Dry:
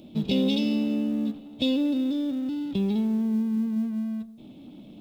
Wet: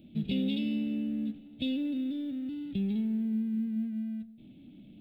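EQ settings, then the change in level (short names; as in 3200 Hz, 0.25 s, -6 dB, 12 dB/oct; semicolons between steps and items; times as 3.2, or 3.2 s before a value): bell 480 Hz -8 dB 1.5 oct; high shelf 3500 Hz -8.5 dB; fixed phaser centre 2500 Hz, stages 4; -2.5 dB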